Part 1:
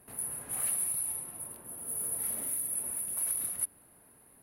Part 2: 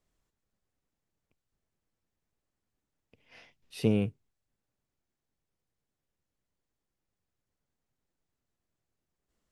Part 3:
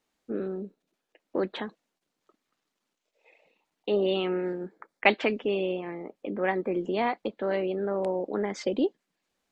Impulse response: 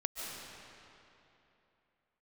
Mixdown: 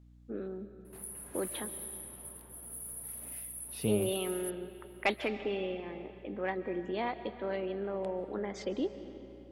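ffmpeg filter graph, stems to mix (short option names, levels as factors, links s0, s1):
-filter_complex "[0:a]acompressor=threshold=0.0126:ratio=2.5,adelay=850,volume=0.596[s0];[1:a]volume=0.501[s1];[2:a]acontrast=80,volume=0.15,asplit=2[s2][s3];[s3]volume=0.335[s4];[3:a]atrim=start_sample=2205[s5];[s4][s5]afir=irnorm=-1:irlink=0[s6];[s0][s1][s2][s6]amix=inputs=4:normalize=0,equalizer=f=3400:t=o:w=0.21:g=3.5,aeval=exprs='val(0)+0.00158*(sin(2*PI*60*n/s)+sin(2*PI*2*60*n/s)/2+sin(2*PI*3*60*n/s)/3+sin(2*PI*4*60*n/s)/4+sin(2*PI*5*60*n/s)/5)':c=same"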